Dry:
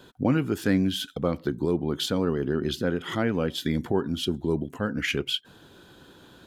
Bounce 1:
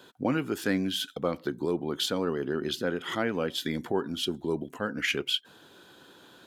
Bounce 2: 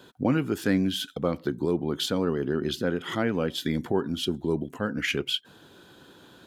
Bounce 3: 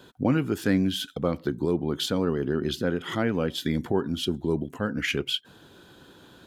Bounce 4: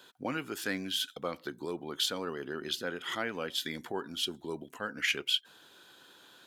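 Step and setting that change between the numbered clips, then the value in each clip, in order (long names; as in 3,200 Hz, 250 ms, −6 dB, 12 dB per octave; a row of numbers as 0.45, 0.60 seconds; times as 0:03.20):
high-pass filter, corner frequency: 380, 120, 42, 1,400 Hertz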